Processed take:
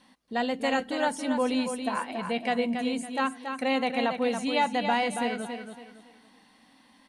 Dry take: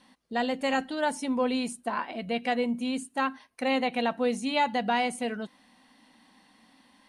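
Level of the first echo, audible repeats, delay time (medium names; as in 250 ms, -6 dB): -7.0 dB, 3, 279 ms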